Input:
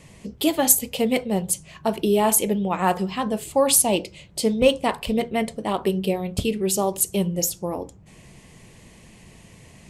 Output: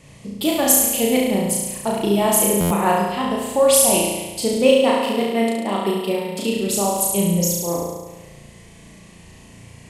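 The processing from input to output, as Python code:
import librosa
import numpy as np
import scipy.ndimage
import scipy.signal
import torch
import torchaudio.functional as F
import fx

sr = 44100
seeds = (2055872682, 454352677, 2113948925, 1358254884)

y = fx.steep_highpass(x, sr, hz=170.0, slope=48, at=(4.53, 6.53))
y = fx.room_flutter(y, sr, wall_m=6.0, rt60_s=1.2)
y = fx.buffer_glitch(y, sr, at_s=(2.6,), block=512, repeats=8)
y = y * librosa.db_to_amplitude(-1.0)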